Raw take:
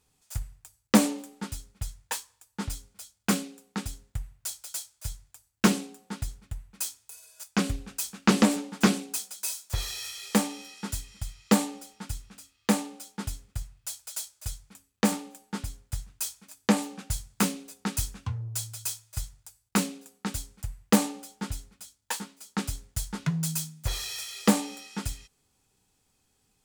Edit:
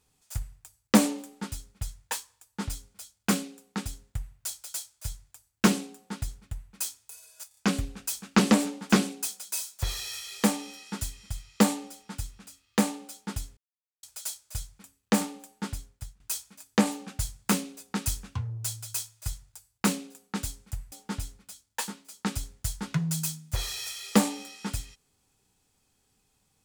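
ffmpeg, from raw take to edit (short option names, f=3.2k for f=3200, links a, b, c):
-filter_complex "[0:a]asplit=8[a][b][c][d][e][f][g][h];[a]atrim=end=7.512[i];[b]atrim=start=7.478:end=7.512[j];[c]atrim=start=7.478:end=7.512[k];[d]atrim=start=7.478:end=13.48,asetpts=PTS-STARTPTS,afade=t=out:st=5.998:d=0.004:c=hsin[l];[e]atrim=start=13.48:end=13.94,asetpts=PTS-STARTPTS,volume=0[m];[f]atrim=start=13.94:end=16.11,asetpts=PTS-STARTPTS,afade=t=in:d=0.004:c=hsin,afade=t=out:st=1.7:d=0.47:silence=0.133352[n];[g]atrim=start=16.11:end=20.832,asetpts=PTS-STARTPTS,afade=t=in:d=0.004:c=hsin:silence=0.133352[o];[h]atrim=start=21.238[p];[i][j]acrossfade=d=0.004:c1=hsin:c2=hsin[q];[q][k]acrossfade=d=0.004:c1=hsin:c2=hsin[r];[l][m][n][o]concat=n=4:v=0:a=1[s];[r][s]acrossfade=d=0.004:c1=hsin:c2=hsin[t];[t][p]acrossfade=d=0.004:c1=hsin:c2=hsin"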